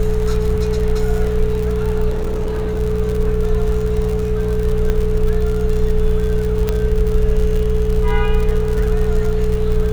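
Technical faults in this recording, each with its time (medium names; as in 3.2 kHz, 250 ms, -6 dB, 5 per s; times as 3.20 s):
crackle 80 per s -22 dBFS
hum 60 Hz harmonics 3 -21 dBFS
whine 430 Hz -20 dBFS
2.10–2.81 s: clipped -16 dBFS
4.90 s: pop -8 dBFS
6.69 s: pop -5 dBFS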